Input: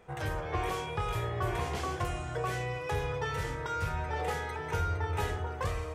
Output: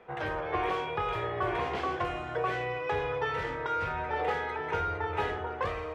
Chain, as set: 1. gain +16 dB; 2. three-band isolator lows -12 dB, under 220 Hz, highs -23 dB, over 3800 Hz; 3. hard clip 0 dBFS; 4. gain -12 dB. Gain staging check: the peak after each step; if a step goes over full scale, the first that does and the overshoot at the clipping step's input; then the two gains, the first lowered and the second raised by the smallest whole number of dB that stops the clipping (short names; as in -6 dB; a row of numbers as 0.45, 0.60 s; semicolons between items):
-4.0, -5.0, -5.0, -17.0 dBFS; no overload